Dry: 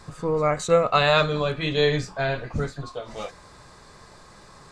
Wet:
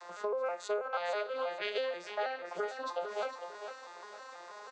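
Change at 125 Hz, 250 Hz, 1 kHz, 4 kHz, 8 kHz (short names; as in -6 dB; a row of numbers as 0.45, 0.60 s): under -40 dB, -24.0 dB, -11.0 dB, -15.5 dB, -14.5 dB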